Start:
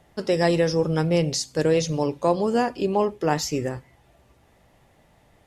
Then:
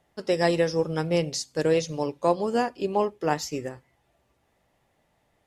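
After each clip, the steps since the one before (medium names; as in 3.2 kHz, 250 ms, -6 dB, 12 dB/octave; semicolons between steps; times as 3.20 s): bass shelf 200 Hz -5.5 dB; upward expansion 1.5:1, over -36 dBFS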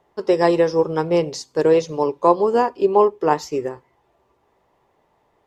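fifteen-band graphic EQ 400 Hz +11 dB, 1 kHz +12 dB, 10 kHz -7 dB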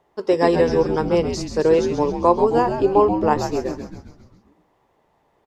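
frequency-shifting echo 133 ms, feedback 57%, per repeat -99 Hz, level -7.5 dB; trim -1 dB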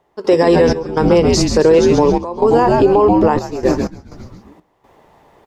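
in parallel at -0.5 dB: compression, threshold -24 dBFS, peak gain reduction 14 dB; on the sum: peak limiter -11.5 dBFS, peak gain reduction 11.5 dB; trance gate ".xx.xxxxx.xxxx.x" 62 bpm -12 dB; trim +8.5 dB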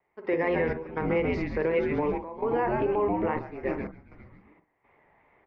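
four-pole ladder low-pass 2.3 kHz, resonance 75%; vibrato 2.5 Hz 55 cents; reverberation, pre-delay 43 ms, DRR 10.5 dB; trim -4.5 dB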